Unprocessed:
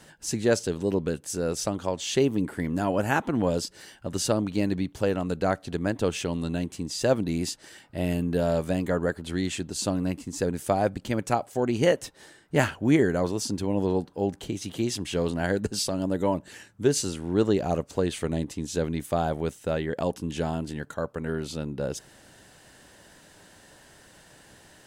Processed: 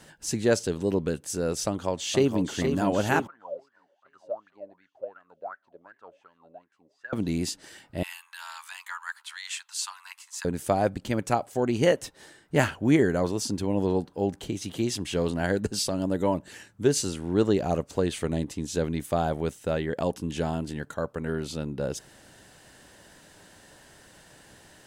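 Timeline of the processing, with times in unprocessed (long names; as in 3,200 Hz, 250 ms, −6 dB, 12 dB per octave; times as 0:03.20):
0:01.67–0:02.53: delay throw 470 ms, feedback 70%, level −6.5 dB
0:03.27–0:07.13: LFO wah 2.7 Hz 550–1,700 Hz, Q 16
0:08.03–0:10.45: Butterworth high-pass 910 Hz 72 dB per octave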